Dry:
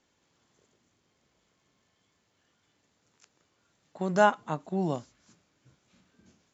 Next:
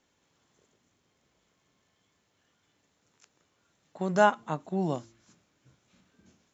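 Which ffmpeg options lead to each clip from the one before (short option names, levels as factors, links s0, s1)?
-af "bandreject=f=4700:w=19,bandreject=f=113.9:t=h:w=4,bandreject=f=227.8:t=h:w=4,bandreject=f=341.7:t=h:w=4"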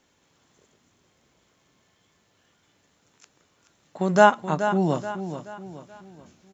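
-af "aecho=1:1:428|856|1284|1712:0.316|0.13|0.0532|0.0218,volume=2.11"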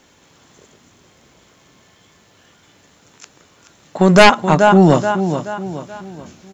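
-af "aeval=exprs='0.841*sin(PI/2*3.16*val(0)/0.841)':c=same"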